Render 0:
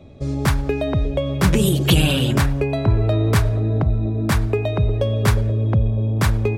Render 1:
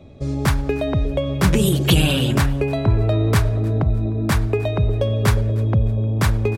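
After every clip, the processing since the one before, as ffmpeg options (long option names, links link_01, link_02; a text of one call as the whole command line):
ffmpeg -i in.wav -af "aecho=1:1:307|614:0.0631|0.0227" out.wav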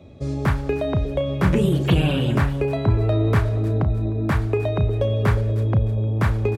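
ffmpeg -i in.wav -filter_complex "[0:a]acrossover=split=2600[link_01][link_02];[link_02]acompressor=threshold=-42dB:ratio=4:attack=1:release=60[link_03];[link_01][link_03]amix=inputs=2:normalize=0,highpass=49,asplit=2[link_04][link_05];[link_05]adelay=34,volume=-10.5dB[link_06];[link_04][link_06]amix=inputs=2:normalize=0,volume=-1.5dB" out.wav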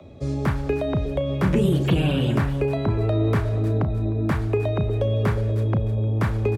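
ffmpeg -i in.wav -filter_complex "[0:a]acrossover=split=480[link_01][link_02];[link_02]acompressor=threshold=-27dB:ratio=6[link_03];[link_01][link_03]amix=inputs=2:normalize=0,acrossover=split=150|400|1200[link_04][link_05][link_06][link_07];[link_04]alimiter=limit=-21dB:level=0:latency=1[link_08];[link_06]acompressor=mode=upward:threshold=-47dB:ratio=2.5[link_09];[link_08][link_05][link_09][link_07]amix=inputs=4:normalize=0" out.wav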